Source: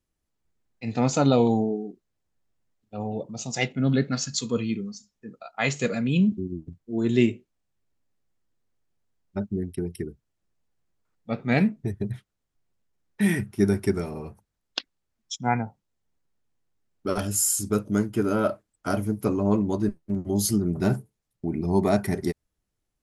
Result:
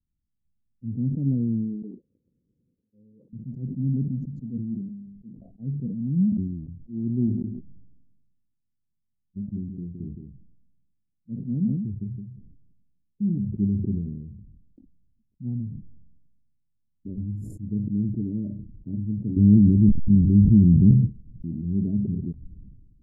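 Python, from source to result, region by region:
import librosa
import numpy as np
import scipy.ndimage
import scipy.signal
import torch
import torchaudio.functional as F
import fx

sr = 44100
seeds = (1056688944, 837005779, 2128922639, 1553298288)

y = fx.chain(x, sr, fx.crossing_spikes(level_db=-36.5),
    fx.double_bandpass(hz=690.0, octaves=0.85), at=(1.82, 3.33))
y = fx.chain(y, sr, fx.low_shelf(hz=62.0, db=-9.0),
    fx.hum_notches(base_hz=50, count=9), at=(4.46, 5.32))
y = fx.chain(y, sr, fx.low_shelf(hz=120.0, db=-7.0),
    fx.echo_single(ms=167, db=-8.5), at=(7.27, 13.45))
y = fx.chain(y, sr, fx.delta_mod(bps=32000, step_db=-31.5),
    fx.low_shelf(hz=340.0, db=11.5),
    fx.env_flatten(amount_pct=50), at=(19.36, 20.91))
y = fx.wiener(y, sr, points=41)
y = scipy.signal.sosfilt(scipy.signal.cheby2(4, 70, 1100.0, 'lowpass', fs=sr, output='sos'), y)
y = fx.sustainer(y, sr, db_per_s=42.0)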